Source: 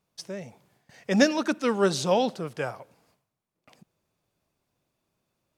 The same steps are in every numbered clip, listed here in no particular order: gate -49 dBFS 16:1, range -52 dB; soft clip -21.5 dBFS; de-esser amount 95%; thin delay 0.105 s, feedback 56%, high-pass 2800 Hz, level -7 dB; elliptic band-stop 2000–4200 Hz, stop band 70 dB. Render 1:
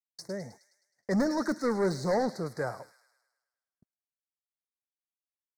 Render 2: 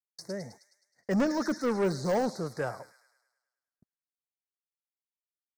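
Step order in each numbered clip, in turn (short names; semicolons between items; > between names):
soft clip > elliptic band-stop > de-esser > gate > thin delay; gate > thin delay > de-esser > elliptic band-stop > soft clip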